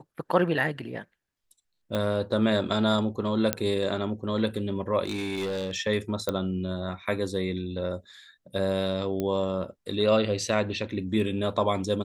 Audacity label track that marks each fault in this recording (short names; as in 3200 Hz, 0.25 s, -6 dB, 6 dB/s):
1.950000	1.950000	pop -16 dBFS
3.530000	3.530000	pop -6 dBFS
5.050000	5.770000	clipped -26.5 dBFS
6.290000	6.290000	pop -13 dBFS
9.200000	9.200000	pop -17 dBFS